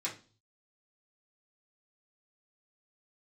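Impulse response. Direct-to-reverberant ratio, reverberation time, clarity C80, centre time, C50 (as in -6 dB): -6.5 dB, 0.35 s, 17.5 dB, 19 ms, 11.0 dB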